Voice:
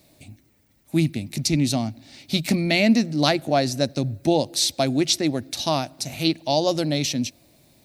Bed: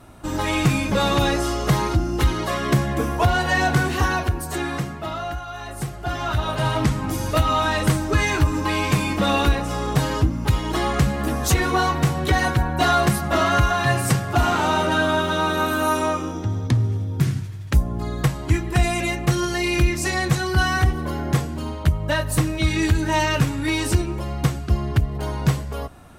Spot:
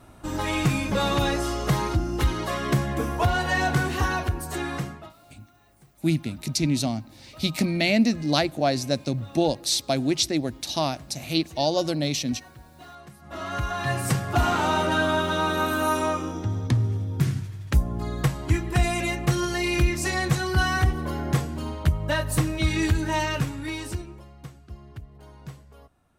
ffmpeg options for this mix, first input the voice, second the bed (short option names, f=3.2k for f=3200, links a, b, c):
-filter_complex "[0:a]adelay=5100,volume=-2.5dB[a];[1:a]volume=20.5dB,afade=t=out:st=4.86:d=0.27:silence=0.0668344,afade=t=in:st=13.18:d=1.12:silence=0.0595662,afade=t=out:st=22.82:d=1.5:silence=0.125893[b];[a][b]amix=inputs=2:normalize=0"